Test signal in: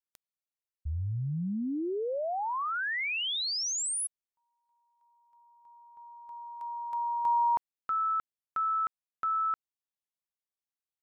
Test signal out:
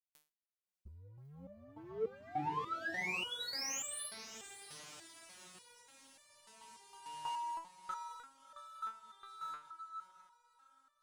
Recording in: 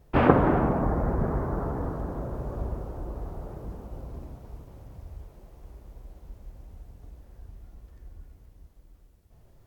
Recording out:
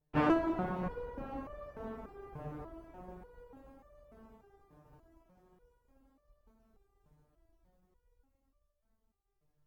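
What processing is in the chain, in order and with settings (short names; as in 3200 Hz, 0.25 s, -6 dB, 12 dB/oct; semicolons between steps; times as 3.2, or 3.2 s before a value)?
diffused feedback echo 0.632 s, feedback 70%, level -11 dB; power-law curve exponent 1.4; stepped resonator 3.4 Hz 150–590 Hz; gain +8 dB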